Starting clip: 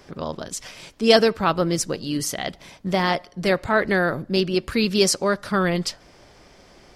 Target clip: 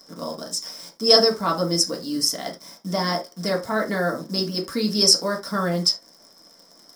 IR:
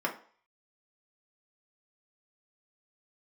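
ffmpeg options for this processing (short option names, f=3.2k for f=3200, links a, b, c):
-filter_complex "[0:a]acrusher=bits=8:dc=4:mix=0:aa=0.000001,highshelf=f=3.7k:t=q:w=3:g=12[a];[1:a]atrim=start_sample=2205,afade=t=out:st=0.14:d=0.01,atrim=end_sample=6615[b];[a][b]afir=irnorm=-1:irlink=0,volume=-10.5dB"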